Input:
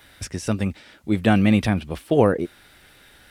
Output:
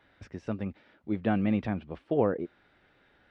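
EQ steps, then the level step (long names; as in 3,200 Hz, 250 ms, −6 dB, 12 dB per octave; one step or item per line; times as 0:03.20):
head-to-tape spacing loss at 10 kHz 37 dB
low-shelf EQ 120 Hz −11 dB
−6.0 dB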